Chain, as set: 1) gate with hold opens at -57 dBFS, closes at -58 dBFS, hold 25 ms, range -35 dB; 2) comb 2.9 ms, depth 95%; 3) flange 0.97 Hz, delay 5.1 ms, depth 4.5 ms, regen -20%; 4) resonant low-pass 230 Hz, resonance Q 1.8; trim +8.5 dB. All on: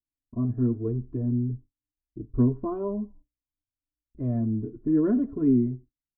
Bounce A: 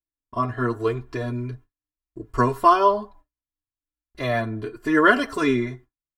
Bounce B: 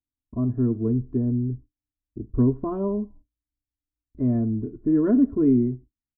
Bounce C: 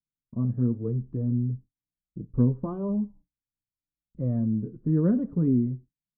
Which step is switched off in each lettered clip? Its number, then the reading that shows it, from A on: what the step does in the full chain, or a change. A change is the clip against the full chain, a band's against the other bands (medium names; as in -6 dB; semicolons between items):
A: 4, 1 kHz band +26.0 dB; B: 3, loudness change +3.0 LU; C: 2, 125 Hz band +5.5 dB